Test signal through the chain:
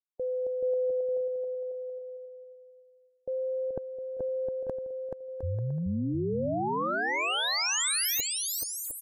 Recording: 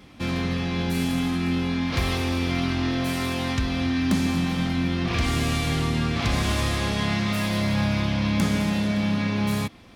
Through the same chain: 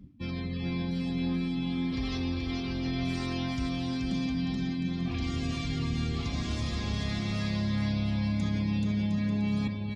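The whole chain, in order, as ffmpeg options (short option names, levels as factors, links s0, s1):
-filter_complex "[0:a]bass=f=250:g=4,treble=f=4000:g=8,adynamicsmooth=sensitivity=7:basefreq=3500,highshelf=f=5300:g=7,areverse,acompressor=threshold=0.0224:ratio=6,areverse,afftdn=nr=27:nf=-42,asplit=2[s0][s1];[s1]aecho=0:1:430|709.5|891.2|1009|1086:0.631|0.398|0.251|0.158|0.1[s2];[s0][s2]amix=inputs=2:normalize=0,volume=1.19"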